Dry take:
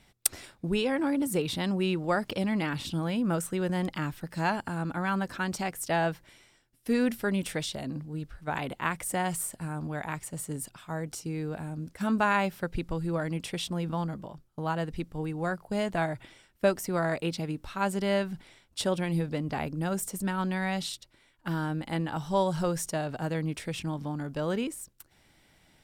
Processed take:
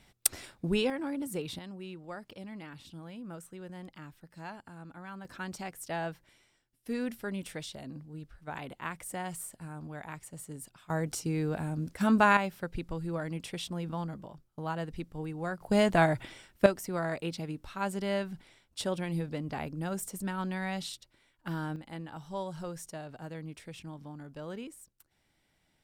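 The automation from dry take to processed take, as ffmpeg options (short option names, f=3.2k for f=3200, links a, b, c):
-af "asetnsamples=n=441:p=0,asendcmd='0.9 volume volume -7.5dB;1.59 volume volume -15.5dB;5.25 volume volume -8dB;10.9 volume volume 2.5dB;12.37 volume volume -4.5dB;15.61 volume volume 5dB;16.66 volume volume -4.5dB;21.76 volume volume -11dB',volume=-0.5dB"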